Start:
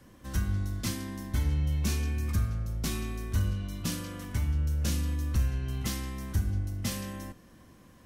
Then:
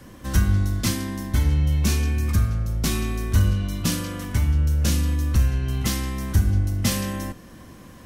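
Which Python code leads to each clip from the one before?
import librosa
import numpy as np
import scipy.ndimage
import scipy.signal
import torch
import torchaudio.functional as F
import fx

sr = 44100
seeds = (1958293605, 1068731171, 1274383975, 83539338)

y = fx.rider(x, sr, range_db=3, speed_s=2.0)
y = y * librosa.db_to_amplitude(8.5)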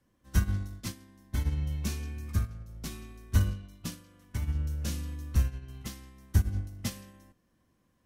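y = fx.upward_expand(x, sr, threshold_db=-29.0, expansion=2.5)
y = y * librosa.db_to_amplitude(-3.5)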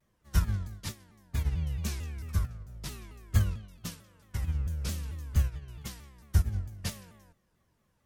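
y = fx.peak_eq(x, sr, hz=270.0, db=-14.0, octaves=0.36)
y = fx.vibrato_shape(y, sr, shape='saw_down', rate_hz=4.5, depth_cents=250.0)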